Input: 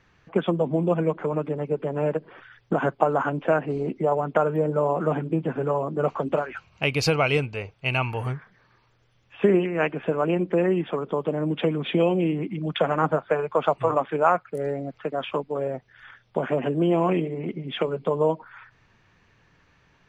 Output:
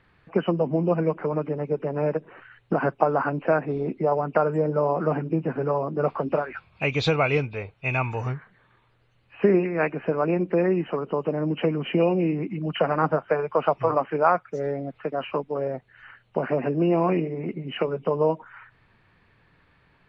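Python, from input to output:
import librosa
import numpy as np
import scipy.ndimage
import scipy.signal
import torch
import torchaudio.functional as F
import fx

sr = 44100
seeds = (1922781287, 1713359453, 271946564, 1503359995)

y = fx.freq_compress(x, sr, knee_hz=2300.0, ratio=1.5)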